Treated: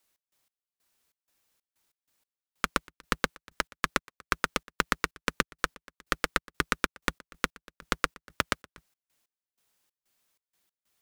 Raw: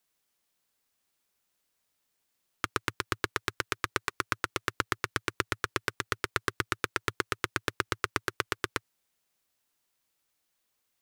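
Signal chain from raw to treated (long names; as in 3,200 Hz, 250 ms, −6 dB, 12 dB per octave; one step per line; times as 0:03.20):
sub-harmonics by changed cycles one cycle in 2, inverted
gate pattern "x.x..xx.xx." 94 BPM −24 dB
level +3.5 dB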